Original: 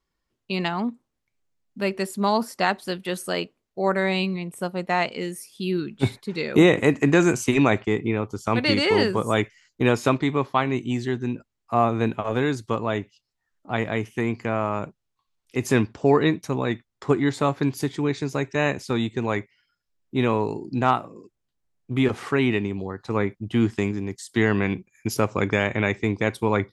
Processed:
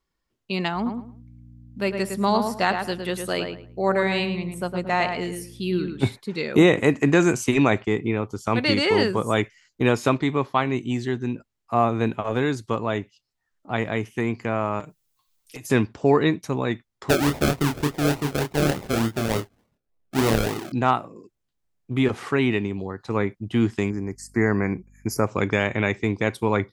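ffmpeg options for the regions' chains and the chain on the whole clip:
-filter_complex "[0:a]asettb=1/sr,asplit=3[a][b][c];[a]atrim=end=0.754[d];[b]atrim=start=0.75:end=6.09,asetpts=PTS-STARTPTS,afade=t=in:d=0.004:c=qsin,afade=t=out:st=5.336:d=0.004:c=qsin,aeval=exprs='val(0)+0.00631*(sin(2*PI*60*n/s)+sin(2*PI*2*60*n/s)/2+sin(2*PI*3*60*n/s)/3+sin(2*PI*4*60*n/s)/4+sin(2*PI*5*60*n/s)/5)':c=same,asplit=2[e][f];[f]adelay=109,lowpass=f=2.5k:p=1,volume=-5.5dB,asplit=2[g][h];[h]adelay=109,lowpass=f=2.5k:p=1,volume=0.25,asplit=2[i][j];[j]adelay=109,lowpass=f=2.5k:p=1,volume=0.25[k];[e][g][i][k]amix=inputs=4:normalize=0,atrim=end_sample=235494[l];[c]atrim=start=6.086[m];[d][l]acrossfade=d=0.004:c1=hsin:c2=qsin[n];[n][m]acrossfade=d=0.004:c1=qsin:c2=hsin,asettb=1/sr,asplit=3[o][p][q];[o]atrim=end=14.804[r];[p]atrim=start=14.8:end=15.7,asetpts=PTS-STARTPTS,afade=t=in:d=0.004:c=qsin,afade=t=out:st=0.896:d=0.004:c=qsin,aemphasis=mode=production:type=75kf,acompressor=threshold=-35dB:ratio=12:attack=3.2:release=140:knee=1:detection=peak,aecho=1:1:6.6:0.74,atrim=end_sample=39690[s];[q]atrim=start=15.696[t];[r][s]acrossfade=d=0.004:c1=hsin:c2=qsin[u];[u][t]acrossfade=d=0.004:c1=qsin:c2=hsin,asettb=1/sr,asplit=3[v][w][x];[v]atrim=end=17.094[y];[w]atrim=start=17.09:end=20.72,asetpts=PTS-STARTPTS,afade=t=in:d=0.004:c=qsin,afade=t=out:st=3.626:d=0.004:c=qsin,acrusher=samples=37:mix=1:aa=0.000001:lfo=1:lforange=22.2:lforate=3.4,asplit=2[z][aa];[aa]adelay=27,volume=-5dB[ab];[z][ab]amix=inputs=2:normalize=0,atrim=end_sample=160083[ac];[x]atrim=start=20.716[ad];[y][ac]acrossfade=d=0.004:c1=hsin:c2=qsin[ae];[ae][ad]acrossfade=d=0.004:c1=qsin:c2=hsin,asettb=1/sr,asplit=3[af][ag][ah];[af]atrim=end=23.904[ai];[ag]atrim=start=23.9:end=25.27,asetpts=PTS-STARTPTS,afade=t=in:d=0.004:c=qsin,afade=t=out:st=1.366:d=0.004:c=qsin,equalizer=f=3k:t=o:w=0.58:g=-9,aeval=exprs='val(0)+0.00251*(sin(2*PI*50*n/s)+sin(2*PI*2*50*n/s)/2+sin(2*PI*3*50*n/s)/3+sin(2*PI*4*50*n/s)/4+sin(2*PI*5*50*n/s)/5)':c=same,asuperstop=centerf=3300:order=8:qfactor=1.5[aj];[ah]atrim=start=25.266[ak];[ai][aj]acrossfade=d=0.004:c1=hsin:c2=qsin[al];[al][ak]acrossfade=d=0.004:c1=qsin:c2=hsin"

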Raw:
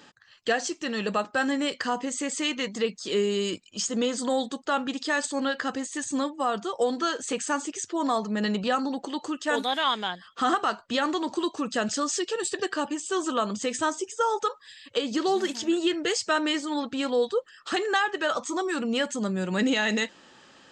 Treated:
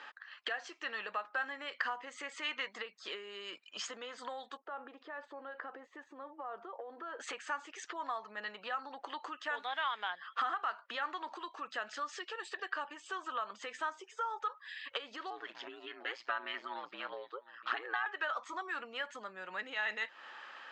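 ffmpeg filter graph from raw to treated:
-filter_complex "[0:a]asettb=1/sr,asplit=3[a][b][c];[a]atrim=end=4.574[d];[b]atrim=start=4.57:end=7.2,asetpts=PTS-STARTPTS,afade=t=in:d=0.004:c=qsin,afade=t=out:st=2.626:d=0.004:c=qsin,acompressor=threshold=-32dB:ratio=5:attack=3.2:release=140:knee=1:detection=peak,bandpass=f=400:t=q:w=1.1[e];[c]atrim=start=7.196[f];[d][e]acrossfade=d=0.004:c1=hsin:c2=qsin[g];[g][f]acrossfade=d=0.004:c1=qsin:c2=hsin,asettb=1/sr,asplit=3[h][i][j];[h]atrim=end=15.304[k];[i]atrim=start=15.3:end=18.06,asetpts=PTS-STARTPTS,afade=t=in:d=0.004:c=qsin,afade=t=out:st=2.756:d=0.004:c=qsin,highpass=140,lowpass=4k,aecho=1:1:701:0.0891,atrim=end_sample=121716,aeval=exprs='val(0)*sin(2*PI*59*n/s)':c=same[l];[j]atrim=start=18.056[m];[k][l]acrossfade=d=0.004:c1=hsin:c2=qsin[n];[n][m]acrossfade=d=0.004:c1=qsin:c2=hsin,lowpass=1.8k,acompressor=threshold=-38dB:ratio=10,highpass=1.2k,volume=10.5dB"

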